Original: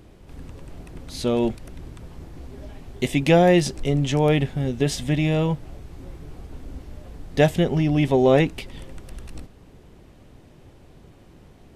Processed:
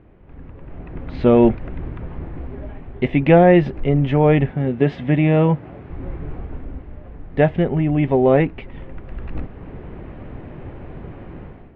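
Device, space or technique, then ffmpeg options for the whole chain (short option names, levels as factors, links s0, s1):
action camera in a waterproof case: -filter_complex "[0:a]asettb=1/sr,asplit=3[s0][s1][s2];[s0]atrim=end=4.514[s3];[s1]atrim=start=4.51:end=5.9,asetpts=PTS-STARTPTS,afade=t=in:d=0.004:c=qsin,afade=t=out:st=1.386:d=0.004:c=qsin,highpass=120[s4];[s2]atrim=start=5.896[s5];[s3][s4]acrossfade=d=0.004:c1=hsin:c2=qsin[s6];[s6][s5]acrossfade=d=0.004:c1=qsin:c2=hsin,lowpass=f=2300:w=0.5412,lowpass=f=2300:w=1.3066,dynaudnorm=f=570:g=3:m=5.96,volume=0.891" -ar 48000 -c:a aac -b:a 96k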